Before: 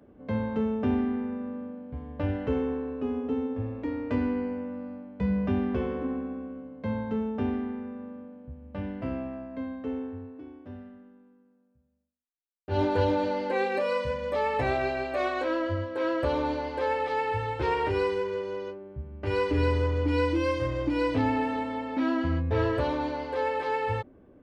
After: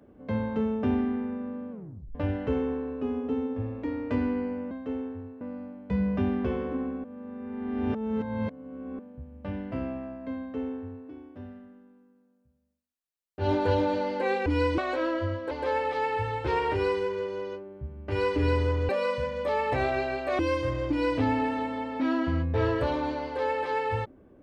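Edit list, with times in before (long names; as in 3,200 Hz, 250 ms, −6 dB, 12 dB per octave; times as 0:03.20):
0:01.71: tape stop 0.44 s
0:06.34–0:08.29: reverse
0:09.69–0:10.39: duplicate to 0:04.71
0:13.76–0:15.26: swap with 0:20.04–0:20.36
0:15.99–0:16.66: remove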